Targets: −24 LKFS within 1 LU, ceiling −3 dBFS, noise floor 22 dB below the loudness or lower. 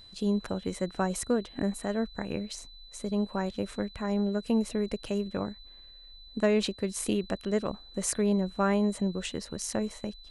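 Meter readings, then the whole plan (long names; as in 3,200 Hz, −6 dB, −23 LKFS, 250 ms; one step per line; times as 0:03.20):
interfering tone 4,000 Hz; level of the tone −50 dBFS; integrated loudness −31.0 LKFS; sample peak −13.0 dBFS; target loudness −24.0 LKFS
→ notch filter 4,000 Hz, Q 30
level +7 dB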